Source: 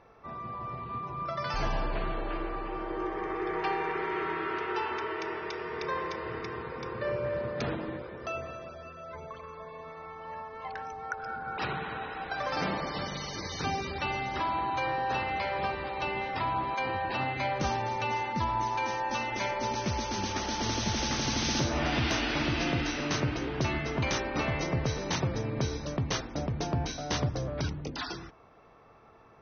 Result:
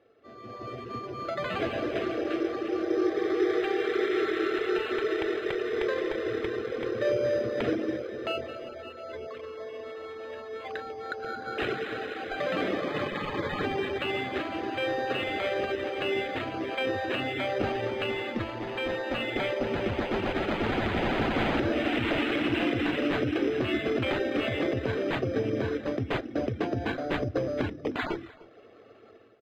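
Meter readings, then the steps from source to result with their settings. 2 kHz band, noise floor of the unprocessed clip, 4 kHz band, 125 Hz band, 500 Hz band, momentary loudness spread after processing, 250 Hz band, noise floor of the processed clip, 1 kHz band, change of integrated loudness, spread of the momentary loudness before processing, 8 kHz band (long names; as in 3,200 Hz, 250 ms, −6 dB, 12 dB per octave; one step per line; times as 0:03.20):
+2.0 dB, −46 dBFS, −0.5 dB, −3.0 dB, +7.0 dB, 11 LU, +5.5 dB, −48 dBFS, −3.5 dB, +2.5 dB, 10 LU, can't be measured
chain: reverb reduction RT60 0.54 s
high-pass filter 110 Hz 24 dB per octave
brickwall limiter −25 dBFS, peak gain reduction 7.5 dB
automatic gain control gain up to 11.5 dB
phaser with its sweep stopped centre 390 Hz, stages 4
decimation without filtering 8×
high-frequency loss of the air 270 metres
single-tap delay 306 ms −22 dB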